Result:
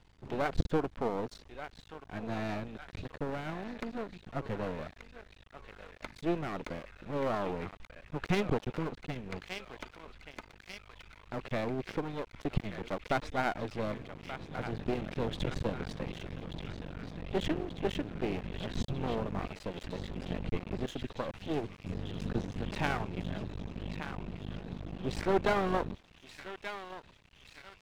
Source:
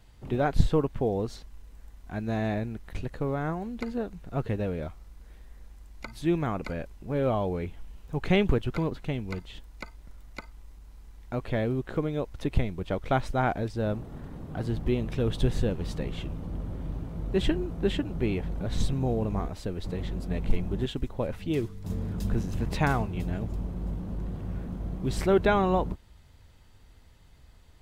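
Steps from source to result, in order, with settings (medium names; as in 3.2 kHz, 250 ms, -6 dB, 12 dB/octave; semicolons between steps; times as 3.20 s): distance through air 76 m; band-passed feedback delay 1182 ms, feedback 80%, band-pass 2.7 kHz, level -6.5 dB; half-wave rectifier; bass shelf 62 Hz -10.5 dB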